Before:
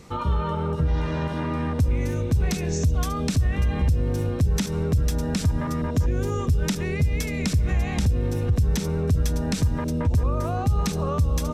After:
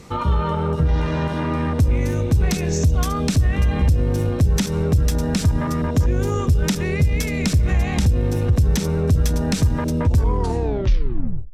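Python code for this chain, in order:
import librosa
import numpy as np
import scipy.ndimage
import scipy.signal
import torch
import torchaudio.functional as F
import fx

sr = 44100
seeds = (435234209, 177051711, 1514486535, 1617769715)

y = fx.tape_stop_end(x, sr, length_s=1.42)
y = fx.cheby_harmonics(y, sr, harmonics=(6,), levels_db=(-29,), full_scale_db=-12.0)
y = y * librosa.db_to_amplitude(4.5)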